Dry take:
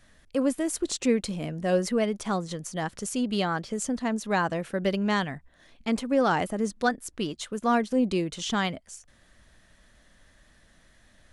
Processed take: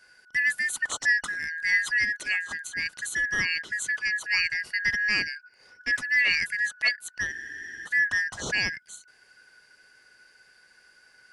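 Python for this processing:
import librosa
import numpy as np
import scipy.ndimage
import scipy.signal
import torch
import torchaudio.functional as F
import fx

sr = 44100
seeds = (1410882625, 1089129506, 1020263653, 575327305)

y = fx.band_shuffle(x, sr, order='3142')
y = fx.spec_freeze(y, sr, seeds[0], at_s=7.33, hold_s=0.52)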